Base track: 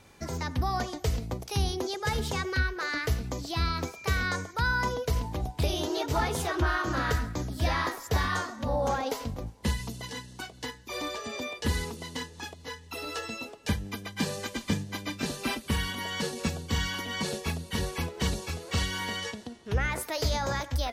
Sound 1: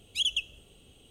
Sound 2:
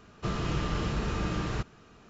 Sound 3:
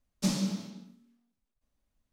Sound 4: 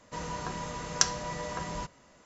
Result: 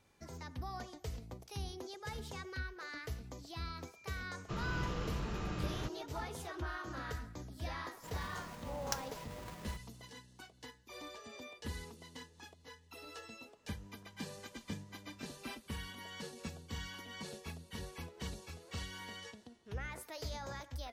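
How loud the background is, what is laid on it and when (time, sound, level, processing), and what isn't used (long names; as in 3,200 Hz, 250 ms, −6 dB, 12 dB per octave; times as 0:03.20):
base track −14.5 dB
0:04.26: mix in 2 −9 dB
0:07.91: mix in 4 −17.5 dB + each half-wave held at its own peak
0:13.56: mix in 4 −16 dB + downward compressor, threshold −48 dBFS
not used: 1, 3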